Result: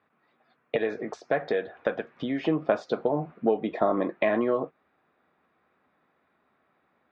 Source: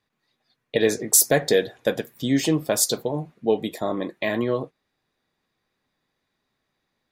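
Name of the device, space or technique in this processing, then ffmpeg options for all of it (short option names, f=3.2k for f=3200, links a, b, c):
bass amplifier: -filter_complex "[0:a]lowpass=9.9k,acompressor=threshold=-30dB:ratio=4,highpass=74,equalizer=f=77:t=q:w=4:g=5,equalizer=f=120:t=q:w=4:g=-10,equalizer=f=690:t=q:w=4:g=4,equalizer=f=1.3k:t=q:w=4:g=6,equalizer=f=1.9k:t=q:w=4:g=-4,lowpass=f=2.3k:w=0.5412,lowpass=f=2.3k:w=1.3066,asettb=1/sr,asplit=3[a][b][c];[a]atrim=end=0.754[d];[b]atrim=start=0.75:end=2.45,asetpts=PTS-STARTPTS,afade=t=in:d=0.004:c=qsin,afade=t=out:st=1.696:d=0.004:c=qsin,equalizer=f=240:t=o:w=2.7:g=-5[e];[c]atrim=start=2.446[f];[d][e]acrossfade=d=0.004:c1=hsin:c2=qsin[g];[g][f]acrossfade=d=0.004:c1=qsin:c2=hsin,highpass=f=140:p=1,equalizer=f=5.9k:t=o:w=0.91:g=6.5,volume=8dB"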